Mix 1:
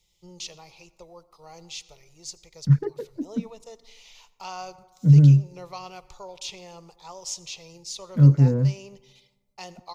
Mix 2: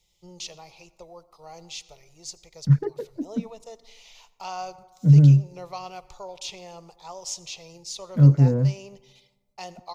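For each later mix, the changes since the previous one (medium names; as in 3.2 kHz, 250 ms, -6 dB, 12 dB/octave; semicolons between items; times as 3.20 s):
master: add peaking EQ 680 Hz +5 dB 0.55 oct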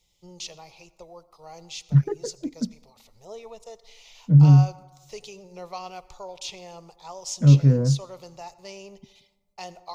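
second voice: entry -0.75 s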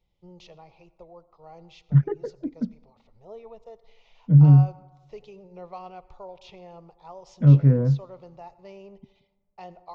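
first voice: add tape spacing loss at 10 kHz 39 dB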